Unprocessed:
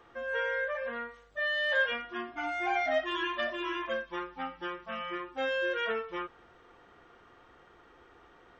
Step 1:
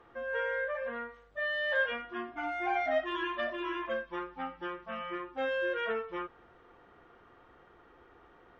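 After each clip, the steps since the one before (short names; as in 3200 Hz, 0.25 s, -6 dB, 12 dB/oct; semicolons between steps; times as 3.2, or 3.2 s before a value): LPF 2000 Hz 6 dB/oct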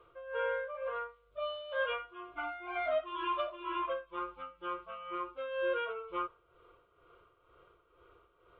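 fixed phaser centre 1200 Hz, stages 8; tremolo 2.1 Hz, depth 66%; dynamic EQ 1000 Hz, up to +7 dB, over -52 dBFS, Q 1.1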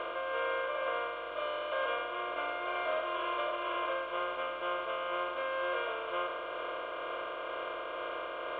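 per-bin compression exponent 0.2; gain -6 dB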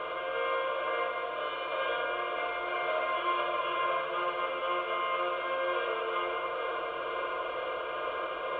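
reverb RT60 2.2 s, pre-delay 3 ms, DRR -1.5 dB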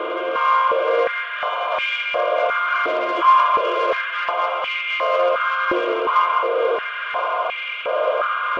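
soft clip -25 dBFS, distortion -19 dB; stepped high-pass 2.8 Hz 330–2300 Hz; gain +9 dB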